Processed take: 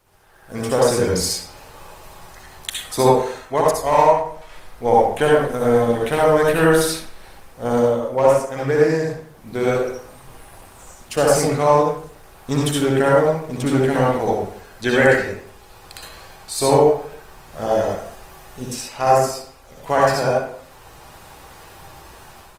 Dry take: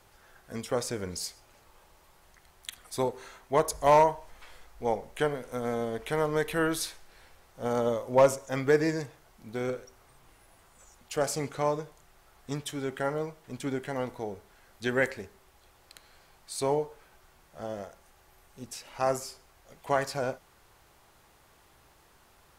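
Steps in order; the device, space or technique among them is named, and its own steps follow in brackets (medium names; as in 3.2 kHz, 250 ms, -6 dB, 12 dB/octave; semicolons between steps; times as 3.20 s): speakerphone in a meeting room (reverberation RT60 0.60 s, pre-delay 58 ms, DRR -4 dB; speakerphone echo 90 ms, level -18 dB; level rider gain up to 14 dB; trim -1 dB; Opus 24 kbps 48 kHz)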